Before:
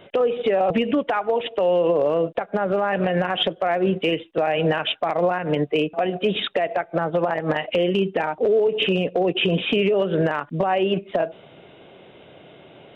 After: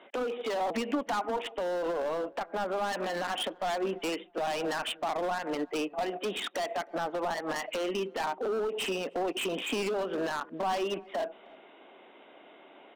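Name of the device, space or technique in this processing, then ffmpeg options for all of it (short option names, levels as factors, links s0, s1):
megaphone: -filter_complex "[0:a]highpass=450,lowpass=3300,equalizer=f=2000:t=o:w=0.58:g=11,asoftclip=type=hard:threshold=0.0794,equalizer=f=125:t=o:w=1:g=-12,equalizer=f=250:t=o:w=1:g=10,equalizer=f=500:t=o:w=1:g=-6,equalizer=f=1000:t=o:w=1:g=5,equalizer=f=2000:t=o:w=1:g=-10,asplit=2[s0][s1];[s1]adelay=311,lowpass=f=980:p=1,volume=0.0794,asplit=2[s2][s3];[s3]adelay=311,lowpass=f=980:p=1,volume=0.31[s4];[s0][s2][s4]amix=inputs=3:normalize=0,volume=0.631"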